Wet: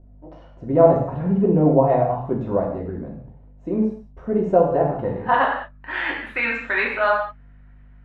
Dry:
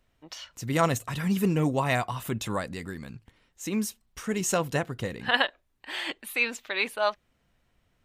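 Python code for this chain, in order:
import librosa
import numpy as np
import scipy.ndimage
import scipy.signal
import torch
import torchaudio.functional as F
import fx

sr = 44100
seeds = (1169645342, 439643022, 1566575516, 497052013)

y = fx.add_hum(x, sr, base_hz=50, snr_db=22)
y = fx.rev_gated(y, sr, seeds[0], gate_ms=230, shape='falling', drr_db=-2.0)
y = fx.filter_sweep_lowpass(y, sr, from_hz=630.0, to_hz=1700.0, start_s=4.69, end_s=6.03, q=2.4)
y = y * 10.0 ** (2.5 / 20.0)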